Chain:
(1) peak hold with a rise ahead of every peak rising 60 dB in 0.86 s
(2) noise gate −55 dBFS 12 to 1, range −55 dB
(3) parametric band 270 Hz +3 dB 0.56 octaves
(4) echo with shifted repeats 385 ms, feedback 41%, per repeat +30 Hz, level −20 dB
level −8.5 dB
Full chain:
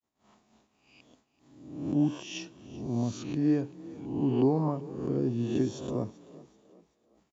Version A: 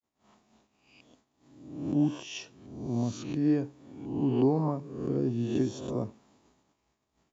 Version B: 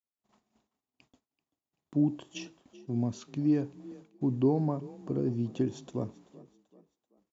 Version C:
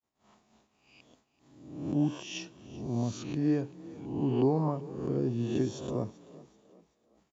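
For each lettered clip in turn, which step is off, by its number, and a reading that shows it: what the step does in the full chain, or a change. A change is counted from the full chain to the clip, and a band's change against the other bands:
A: 4, echo-to-direct ratio −19.0 dB to none audible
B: 1, 125 Hz band +2.5 dB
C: 3, 250 Hz band −2.0 dB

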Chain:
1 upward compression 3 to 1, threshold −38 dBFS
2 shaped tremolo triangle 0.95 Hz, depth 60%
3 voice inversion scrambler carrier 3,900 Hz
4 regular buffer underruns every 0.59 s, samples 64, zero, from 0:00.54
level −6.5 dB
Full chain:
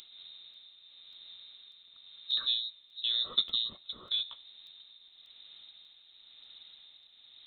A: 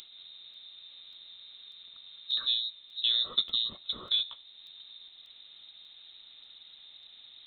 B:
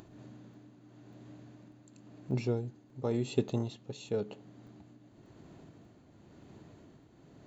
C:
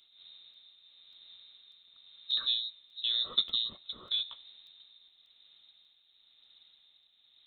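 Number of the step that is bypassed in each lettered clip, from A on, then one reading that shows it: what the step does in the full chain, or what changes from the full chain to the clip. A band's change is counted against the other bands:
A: 2, change in crest factor −2.0 dB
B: 3, 4 kHz band −28.5 dB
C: 1, change in momentary loudness spread −11 LU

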